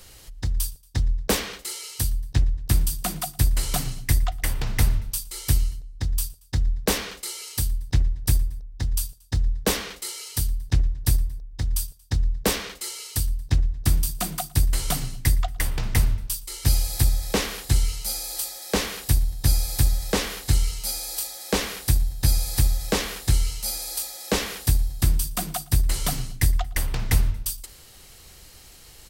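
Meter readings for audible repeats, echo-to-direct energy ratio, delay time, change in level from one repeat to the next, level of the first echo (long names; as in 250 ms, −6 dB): 2, −23.0 dB, 115 ms, −5.0 dB, −24.0 dB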